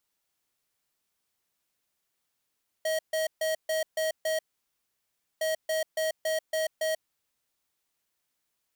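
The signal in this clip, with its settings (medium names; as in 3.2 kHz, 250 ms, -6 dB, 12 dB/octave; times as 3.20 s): beep pattern square 634 Hz, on 0.14 s, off 0.14 s, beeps 6, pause 1.02 s, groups 2, -28 dBFS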